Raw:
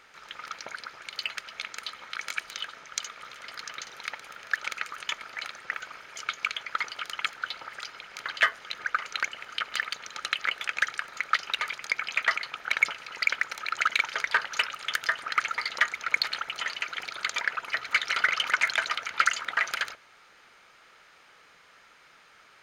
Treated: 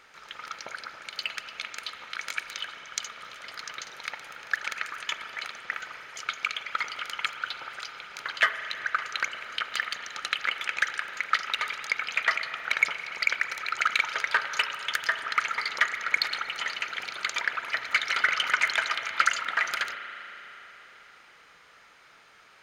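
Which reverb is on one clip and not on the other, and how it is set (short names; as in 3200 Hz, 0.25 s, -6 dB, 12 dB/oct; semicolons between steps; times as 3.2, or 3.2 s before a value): spring tank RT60 3.9 s, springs 35 ms, chirp 45 ms, DRR 8 dB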